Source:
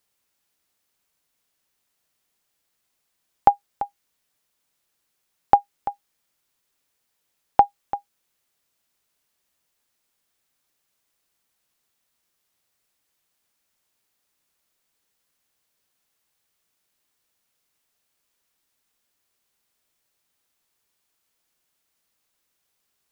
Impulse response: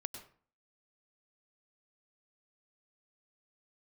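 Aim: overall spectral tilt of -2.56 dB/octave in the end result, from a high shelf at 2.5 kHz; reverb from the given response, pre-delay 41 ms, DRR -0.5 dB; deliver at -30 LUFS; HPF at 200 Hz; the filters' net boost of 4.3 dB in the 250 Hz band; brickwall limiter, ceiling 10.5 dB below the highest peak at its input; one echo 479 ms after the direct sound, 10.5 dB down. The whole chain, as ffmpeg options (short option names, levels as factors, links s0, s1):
-filter_complex "[0:a]highpass=200,equalizer=f=250:t=o:g=7,highshelf=f=2500:g=6.5,alimiter=limit=0.335:level=0:latency=1,aecho=1:1:479:0.299,asplit=2[s0][s1];[1:a]atrim=start_sample=2205,adelay=41[s2];[s1][s2]afir=irnorm=-1:irlink=0,volume=1.33[s3];[s0][s3]amix=inputs=2:normalize=0,volume=0.841"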